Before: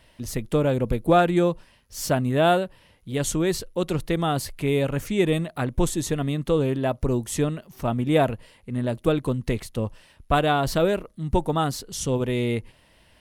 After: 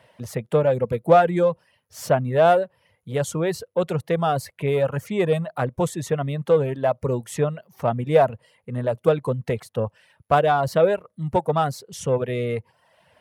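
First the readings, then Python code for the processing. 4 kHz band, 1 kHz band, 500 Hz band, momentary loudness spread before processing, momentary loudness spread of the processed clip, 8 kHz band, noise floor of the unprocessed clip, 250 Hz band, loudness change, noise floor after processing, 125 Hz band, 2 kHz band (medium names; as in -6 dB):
-5.0 dB, +3.5 dB, +4.0 dB, 10 LU, 11 LU, -5.5 dB, -58 dBFS, -4.0 dB, +2.0 dB, -71 dBFS, 0.0 dB, 0.0 dB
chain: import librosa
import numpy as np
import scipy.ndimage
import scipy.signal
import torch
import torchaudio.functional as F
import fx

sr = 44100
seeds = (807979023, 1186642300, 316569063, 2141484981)

p1 = fx.curve_eq(x, sr, hz=(160.0, 310.0, 490.0, 1800.0, 4300.0), db=(0, -9, 5, -1, -8))
p2 = 10.0 ** (-22.5 / 20.0) * np.tanh(p1 / 10.0 ** (-22.5 / 20.0))
p3 = p1 + (p2 * 10.0 ** (-7.0 / 20.0))
p4 = scipy.signal.sosfilt(scipy.signal.butter(4, 100.0, 'highpass', fs=sr, output='sos'), p3)
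y = fx.dereverb_blind(p4, sr, rt60_s=0.69)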